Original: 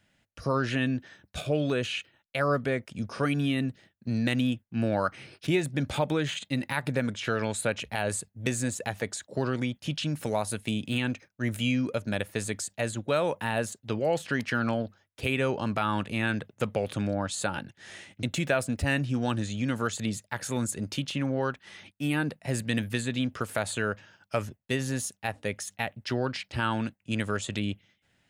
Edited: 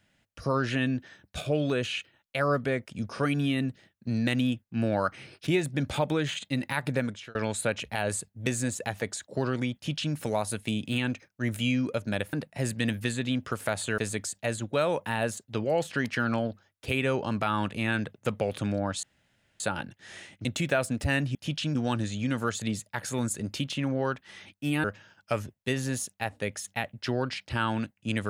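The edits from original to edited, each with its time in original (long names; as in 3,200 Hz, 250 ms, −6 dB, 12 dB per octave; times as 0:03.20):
0:07.00–0:07.35: fade out
0:09.75–0:10.15: duplicate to 0:19.13
0:17.38: splice in room tone 0.57 s
0:22.22–0:23.87: move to 0:12.33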